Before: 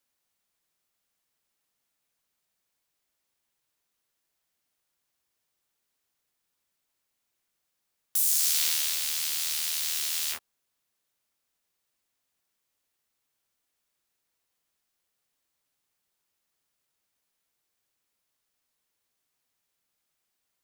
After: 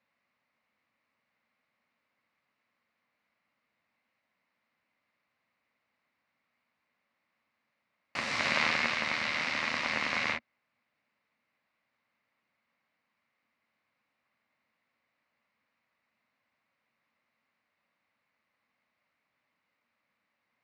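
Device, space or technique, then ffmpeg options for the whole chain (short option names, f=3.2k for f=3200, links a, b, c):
ring modulator pedal into a guitar cabinet: -af "aeval=exprs='val(0)*sgn(sin(2*PI*1100*n/s))':c=same,highpass=100,equalizer=f=230:t=q:w=4:g=8,equalizer=f=390:t=q:w=4:g=-8,equalizer=f=570:t=q:w=4:g=4,equalizer=f=1.1k:t=q:w=4:g=5,equalizer=f=2.1k:t=q:w=4:g=8,equalizer=f=3.3k:t=q:w=4:g=-9,lowpass=f=3.6k:w=0.5412,lowpass=f=3.6k:w=1.3066,volume=5dB"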